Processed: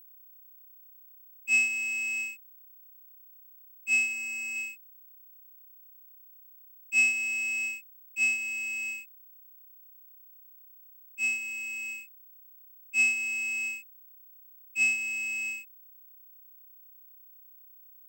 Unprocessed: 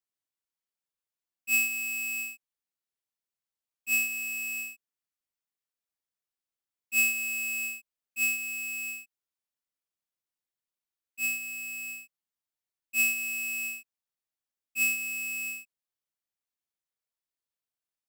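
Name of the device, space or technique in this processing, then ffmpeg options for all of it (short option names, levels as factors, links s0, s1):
old television with a line whistle: -filter_complex "[0:a]highpass=f=170:w=0.5412,highpass=f=170:w=1.3066,equalizer=f=180:t=q:w=4:g=-10,equalizer=f=1400:t=q:w=4:g=-9,equalizer=f=2100:t=q:w=4:g=10,equalizer=f=4100:t=q:w=4:g=-7,equalizer=f=6400:t=q:w=4:g=5,lowpass=f=7500:w=0.5412,lowpass=f=7500:w=1.3066,aeval=exprs='val(0)+0.00282*sin(2*PI*15734*n/s)':c=same,asettb=1/sr,asplit=3[s0][s1][s2];[s0]atrim=end=4.134[s3];[s1]atrim=start=4.13:end=4.56,asetpts=PTS-STARTPTS,afade=t=in:d=0.004:c=qsin,afade=t=out:st=0.426:d=0.004:c=qsin,equalizer=f=3400:w=3.1:g=-10[s4];[s2]atrim=start=4.556[s5];[s3][s4]acrossfade=d=0.004:c1=hsin:c2=qsin[s6];[s6][s5]acrossfade=d=0.004:c1=qsin:c2=hsin"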